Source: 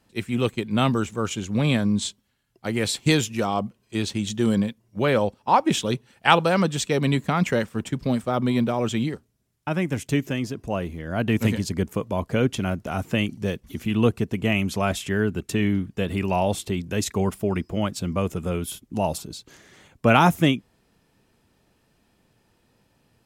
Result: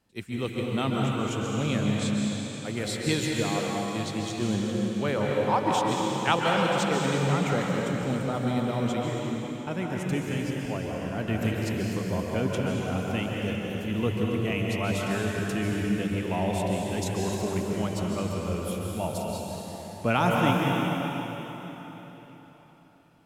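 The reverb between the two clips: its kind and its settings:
dense smooth reverb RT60 4.1 s, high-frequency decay 0.9×, pre-delay 120 ms, DRR −2.5 dB
level −8 dB

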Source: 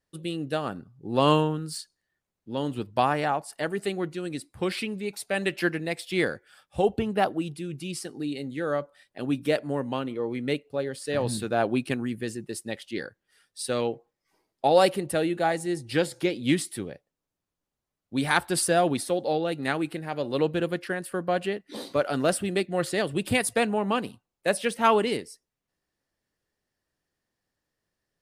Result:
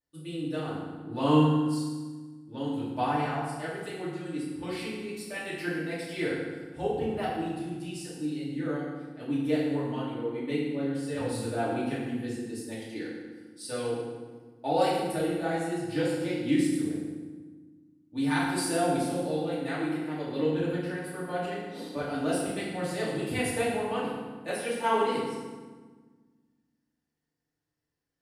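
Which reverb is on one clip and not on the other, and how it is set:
feedback delay network reverb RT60 1.4 s, low-frequency decay 1.55×, high-frequency decay 0.75×, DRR −9.5 dB
level −15 dB

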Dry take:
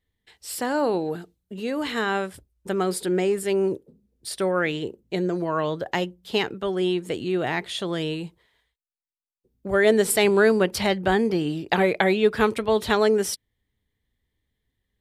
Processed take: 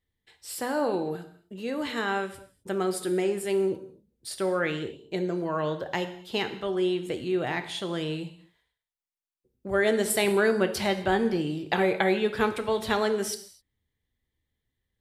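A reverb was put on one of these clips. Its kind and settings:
reverb whose tail is shaped and stops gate 280 ms falling, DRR 7.5 dB
level −4.5 dB

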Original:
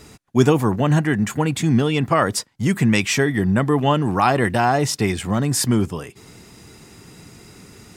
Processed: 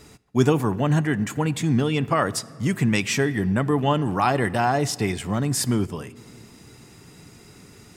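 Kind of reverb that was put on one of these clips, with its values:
rectangular room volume 3,900 cubic metres, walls mixed, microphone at 0.31 metres
level −4 dB

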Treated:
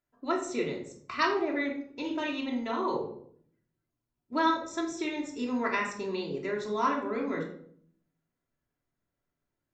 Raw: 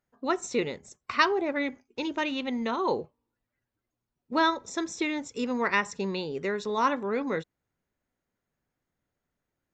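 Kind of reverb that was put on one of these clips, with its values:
rectangular room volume 930 cubic metres, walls furnished, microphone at 3 metres
level −7 dB

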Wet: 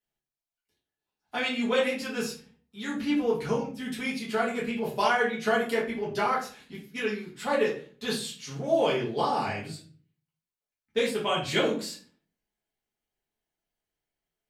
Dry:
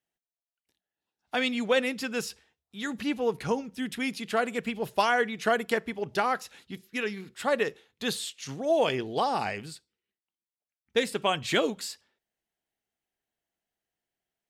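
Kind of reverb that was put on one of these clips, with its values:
rectangular room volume 32 cubic metres, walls mixed, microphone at 1.3 metres
level −8 dB

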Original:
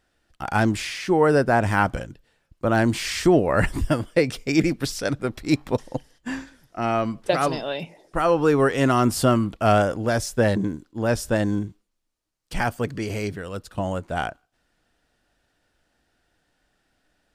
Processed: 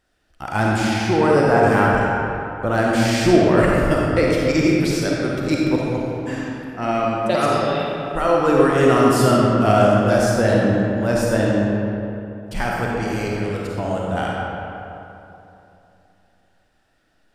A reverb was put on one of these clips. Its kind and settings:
comb and all-pass reverb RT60 3 s, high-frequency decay 0.55×, pre-delay 10 ms, DRR −4 dB
level −1 dB

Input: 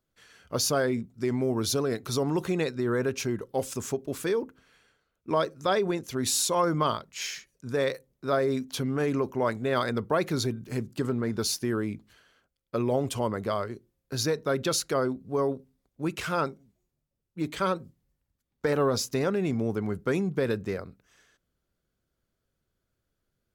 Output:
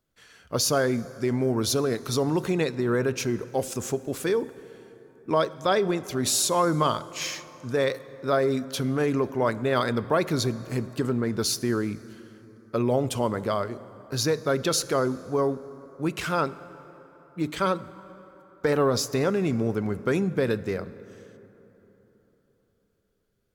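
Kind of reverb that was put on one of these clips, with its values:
dense smooth reverb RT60 4 s, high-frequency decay 0.5×, DRR 16 dB
level +2.5 dB

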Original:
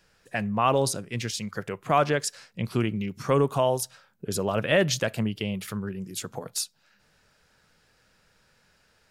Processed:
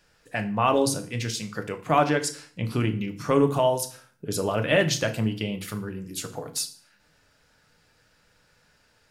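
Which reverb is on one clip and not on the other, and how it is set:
feedback delay network reverb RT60 0.47 s, low-frequency decay 1.35×, high-frequency decay 0.9×, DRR 5.5 dB

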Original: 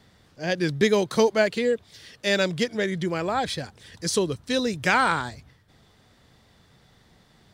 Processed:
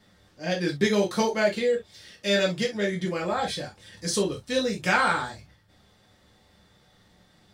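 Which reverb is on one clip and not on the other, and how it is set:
reverb whose tail is shaped and stops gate 90 ms falling, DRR −2 dB
level −5.5 dB

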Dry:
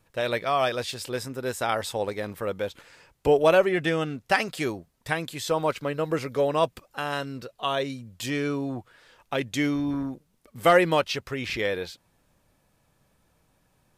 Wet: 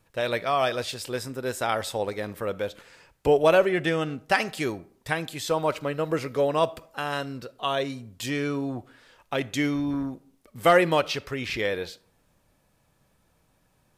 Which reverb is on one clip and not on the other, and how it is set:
comb and all-pass reverb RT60 0.58 s, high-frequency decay 0.55×, pre-delay 0 ms, DRR 18.5 dB

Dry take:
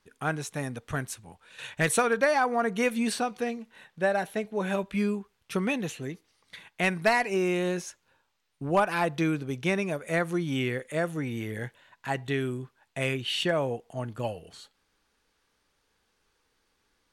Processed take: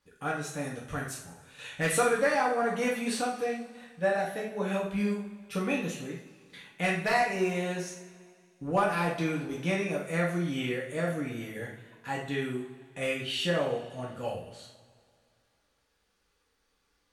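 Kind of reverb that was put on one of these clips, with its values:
coupled-rooms reverb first 0.49 s, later 2.3 s, from −19 dB, DRR −4.5 dB
level −7.5 dB

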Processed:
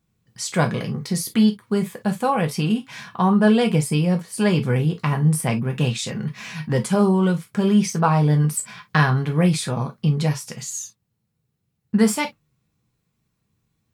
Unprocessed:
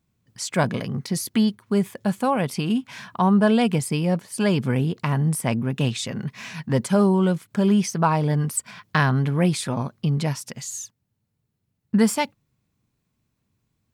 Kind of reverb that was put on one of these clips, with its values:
reverb whose tail is shaped and stops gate 80 ms falling, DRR 3.5 dB

